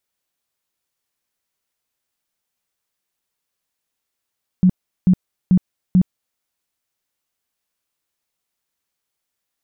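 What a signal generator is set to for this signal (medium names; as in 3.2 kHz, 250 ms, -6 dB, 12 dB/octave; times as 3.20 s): tone bursts 183 Hz, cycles 12, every 0.44 s, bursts 4, -8.5 dBFS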